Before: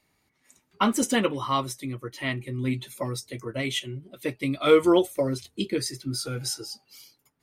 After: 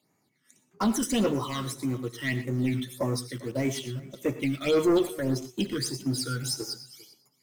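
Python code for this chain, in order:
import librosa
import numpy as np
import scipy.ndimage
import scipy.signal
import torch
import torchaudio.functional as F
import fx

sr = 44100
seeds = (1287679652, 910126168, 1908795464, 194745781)

p1 = scipy.signal.sosfilt(scipy.signal.butter(4, 120.0, 'highpass', fs=sr, output='sos'), x)
p2 = fx.quant_dither(p1, sr, seeds[0], bits=6, dither='none')
p3 = p1 + (p2 * librosa.db_to_amplitude(-8.0))
p4 = 10.0 ** (-20.0 / 20.0) * np.tanh(p3 / 10.0 ** (-20.0 / 20.0))
p5 = fx.phaser_stages(p4, sr, stages=12, low_hz=730.0, high_hz=4000.0, hz=1.7, feedback_pct=40)
p6 = p5 + fx.echo_single(p5, sr, ms=399, db=-22.0, dry=0)
y = fx.rev_gated(p6, sr, seeds[1], gate_ms=140, shape='rising', drr_db=11.0)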